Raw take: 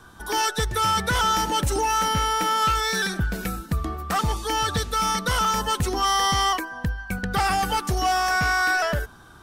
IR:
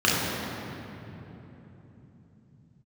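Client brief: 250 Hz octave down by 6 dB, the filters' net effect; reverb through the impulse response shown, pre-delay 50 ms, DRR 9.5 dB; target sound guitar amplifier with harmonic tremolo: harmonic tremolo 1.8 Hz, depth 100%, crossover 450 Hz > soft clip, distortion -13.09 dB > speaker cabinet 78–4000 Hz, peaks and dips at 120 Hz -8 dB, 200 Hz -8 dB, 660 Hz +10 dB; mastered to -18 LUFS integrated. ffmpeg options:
-filter_complex "[0:a]equalizer=f=250:t=o:g=-4,asplit=2[a][b];[1:a]atrim=start_sample=2205,adelay=50[c];[b][c]afir=irnorm=-1:irlink=0,volume=-28.5dB[d];[a][d]amix=inputs=2:normalize=0,acrossover=split=450[e][f];[e]aeval=exprs='val(0)*(1-1/2+1/2*cos(2*PI*1.8*n/s))':c=same[g];[f]aeval=exprs='val(0)*(1-1/2-1/2*cos(2*PI*1.8*n/s))':c=same[h];[g][h]amix=inputs=2:normalize=0,asoftclip=threshold=-21.5dB,highpass=78,equalizer=f=120:t=q:w=4:g=-8,equalizer=f=200:t=q:w=4:g=-8,equalizer=f=660:t=q:w=4:g=10,lowpass=f=4k:w=0.5412,lowpass=f=4k:w=1.3066,volume=11dB"

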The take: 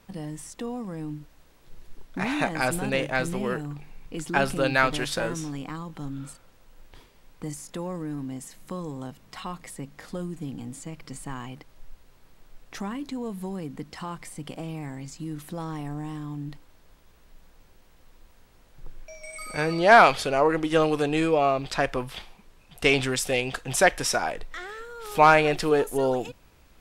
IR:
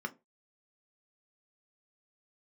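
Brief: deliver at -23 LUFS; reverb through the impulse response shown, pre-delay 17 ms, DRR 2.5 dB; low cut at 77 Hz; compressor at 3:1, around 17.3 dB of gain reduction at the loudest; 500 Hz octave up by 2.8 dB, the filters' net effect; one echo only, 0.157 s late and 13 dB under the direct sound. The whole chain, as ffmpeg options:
-filter_complex "[0:a]highpass=77,equalizer=f=500:t=o:g=3.5,acompressor=threshold=-33dB:ratio=3,aecho=1:1:157:0.224,asplit=2[a][b];[1:a]atrim=start_sample=2205,adelay=17[c];[b][c]afir=irnorm=-1:irlink=0,volume=-4.5dB[d];[a][d]amix=inputs=2:normalize=0,volume=10.5dB"

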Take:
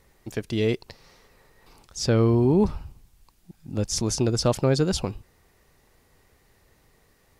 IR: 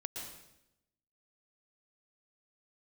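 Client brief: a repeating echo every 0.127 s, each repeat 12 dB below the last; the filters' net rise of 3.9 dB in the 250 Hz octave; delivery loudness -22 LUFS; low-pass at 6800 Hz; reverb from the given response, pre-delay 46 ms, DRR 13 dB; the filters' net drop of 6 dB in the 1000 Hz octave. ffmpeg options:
-filter_complex "[0:a]lowpass=6.8k,equalizer=f=250:t=o:g=5.5,equalizer=f=1k:t=o:g=-8.5,aecho=1:1:127|254|381:0.251|0.0628|0.0157,asplit=2[a][b];[1:a]atrim=start_sample=2205,adelay=46[c];[b][c]afir=irnorm=-1:irlink=0,volume=-12.5dB[d];[a][d]amix=inputs=2:normalize=0"

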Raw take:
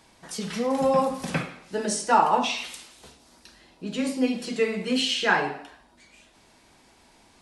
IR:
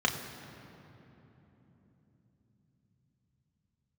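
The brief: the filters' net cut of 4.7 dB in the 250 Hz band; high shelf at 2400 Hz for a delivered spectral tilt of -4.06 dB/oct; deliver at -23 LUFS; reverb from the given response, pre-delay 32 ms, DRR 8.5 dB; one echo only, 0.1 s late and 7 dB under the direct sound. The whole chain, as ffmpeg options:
-filter_complex "[0:a]equalizer=f=250:t=o:g=-5,highshelf=f=2.4k:g=-7,aecho=1:1:100:0.447,asplit=2[a][b];[1:a]atrim=start_sample=2205,adelay=32[c];[b][c]afir=irnorm=-1:irlink=0,volume=-19dB[d];[a][d]amix=inputs=2:normalize=0,volume=3dB"

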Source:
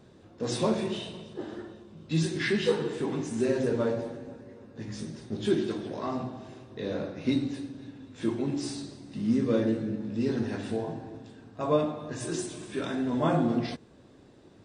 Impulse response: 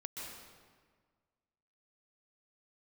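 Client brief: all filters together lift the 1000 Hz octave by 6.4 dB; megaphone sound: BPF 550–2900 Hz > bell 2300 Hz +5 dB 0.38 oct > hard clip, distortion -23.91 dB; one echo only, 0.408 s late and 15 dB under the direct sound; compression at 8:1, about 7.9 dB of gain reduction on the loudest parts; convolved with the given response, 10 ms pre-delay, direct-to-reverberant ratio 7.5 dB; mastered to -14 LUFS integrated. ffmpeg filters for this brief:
-filter_complex "[0:a]equalizer=f=1k:t=o:g=8.5,acompressor=threshold=-25dB:ratio=8,aecho=1:1:408:0.178,asplit=2[a][b];[1:a]atrim=start_sample=2205,adelay=10[c];[b][c]afir=irnorm=-1:irlink=0,volume=-6.5dB[d];[a][d]amix=inputs=2:normalize=0,highpass=550,lowpass=2.9k,equalizer=f=2.3k:t=o:w=0.38:g=5,asoftclip=type=hard:threshold=-24dB,volume=23dB"

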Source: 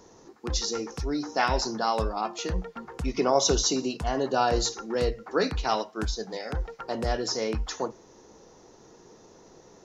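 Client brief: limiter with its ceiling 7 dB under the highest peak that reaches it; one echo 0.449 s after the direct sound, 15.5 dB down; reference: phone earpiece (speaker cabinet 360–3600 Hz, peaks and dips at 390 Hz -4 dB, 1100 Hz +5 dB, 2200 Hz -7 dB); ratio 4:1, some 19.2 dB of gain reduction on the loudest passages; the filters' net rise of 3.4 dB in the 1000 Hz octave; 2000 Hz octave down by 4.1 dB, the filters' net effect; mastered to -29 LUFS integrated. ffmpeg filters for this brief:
-af "equalizer=f=1k:t=o:g=4.5,equalizer=f=2k:t=o:g=-7.5,acompressor=threshold=-41dB:ratio=4,alimiter=level_in=9.5dB:limit=-24dB:level=0:latency=1,volume=-9.5dB,highpass=360,equalizer=f=390:t=q:w=4:g=-4,equalizer=f=1.1k:t=q:w=4:g=5,equalizer=f=2.2k:t=q:w=4:g=-7,lowpass=f=3.6k:w=0.5412,lowpass=f=3.6k:w=1.3066,aecho=1:1:449:0.168,volume=19dB"

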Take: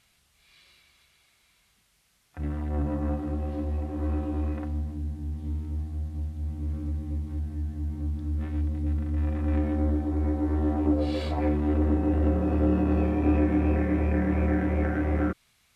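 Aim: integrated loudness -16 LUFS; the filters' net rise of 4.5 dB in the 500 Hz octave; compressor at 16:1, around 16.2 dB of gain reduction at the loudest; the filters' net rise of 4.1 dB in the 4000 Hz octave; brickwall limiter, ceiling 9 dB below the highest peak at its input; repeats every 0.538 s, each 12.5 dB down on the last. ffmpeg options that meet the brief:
-af "equalizer=f=500:t=o:g=5.5,equalizer=f=4k:t=o:g=5,acompressor=threshold=-33dB:ratio=16,alimiter=level_in=9.5dB:limit=-24dB:level=0:latency=1,volume=-9.5dB,aecho=1:1:538|1076|1614:0.237|0.0569|0.0137,volume=25dB"

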